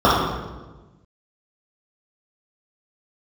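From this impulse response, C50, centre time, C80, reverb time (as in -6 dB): -1.0 dB, 82 ms, 2.5 dB, 1.2 s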